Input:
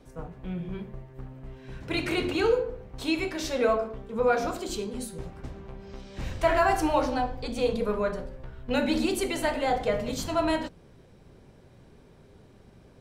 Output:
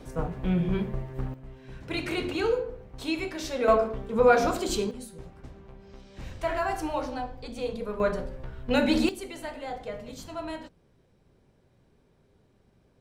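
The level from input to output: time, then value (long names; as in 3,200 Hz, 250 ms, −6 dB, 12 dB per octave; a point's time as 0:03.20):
+8.5 dB
from 0:01.34 −2.5 dB
from 0:03.68 +4.5 dB
from 0:04.91 −6 dB
from 0:08.00 +2.5 dB
from 0:09.09 −10 dB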